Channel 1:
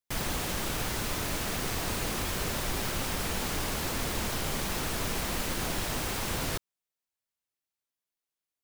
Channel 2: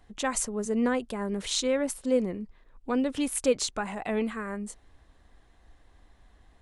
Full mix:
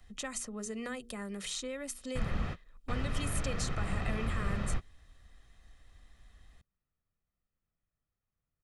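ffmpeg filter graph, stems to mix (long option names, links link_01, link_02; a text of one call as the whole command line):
ffmpeg -i stem1.wav -i stem2.wav -filter_complex "[0:a]lowpass=1500,adelay=2050,volume=1dB[link_01];[1:a]bandreject=frequency=60:width_type=h:width=6,bandreject=frequency=120:width_type=h:width=6,bandreject=frequency=180:width_type=h:width=6,bandreject=frequency=240:width_type=h:width=6,bandreject=frequency=300:width_type=h:width=6,bandreject=frequency=360:width_type=h:width=6,bandreject=frequency=420:width_type=h:width=6,bandreject=frequency=480:width_type=h:width=6,acrossover=split=160|400|1800|6200[link_02][link_03][link_04][link_05][link_06];[link_02]acompressor=threshold=-57dB:ratio=4[link_07];[link_03]acompressor=threshold=-40dB:ratio=4[link_08];[link_04]acompressor=threshold=-37dB:ratio=4[link_09];[link_05]acompressor=threshold=-47dB:ratio=4[link_10];[link_06]acompressor=threshold=-46dB:ratio=4[link_11];[link_07][link_08][link_09][link_10][link_11]amix=inputs=5:normalize=0,volume=1.5dB,asplit=2[link_12][link_13];[link_13]apad=whole_len=471288[link_14];[link_01][link_14]sidechaingate=range=-55dB:threshold=-48dB:ratio=16:detection=peak[link_15];[link_15][link_12]amix=inputs=2:normalize=0,equalizer=frequency=650:width=0.75:gain=-11,aecho=1:1:1.6:0.43" out.wav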